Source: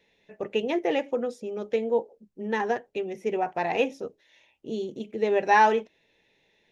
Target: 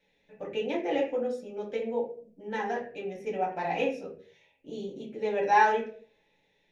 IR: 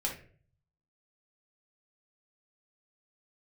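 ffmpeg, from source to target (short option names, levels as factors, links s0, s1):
-filter_complex "[1:a]atrim=start_sample=2205[s0];[0:a][s0]afir=irnorm=-1:irlink=0,volume=0.422"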